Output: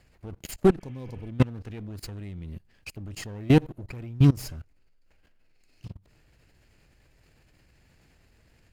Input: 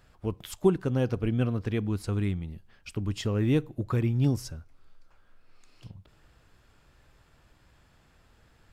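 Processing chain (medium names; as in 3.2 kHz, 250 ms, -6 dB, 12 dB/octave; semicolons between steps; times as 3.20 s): comb filter that takes the minimum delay 0.43 ms; level held to a coarse grid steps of 23 dB; spectral replace 0.83–1.26 s, 1.1–3.3 kHz after; trim +8.5 dB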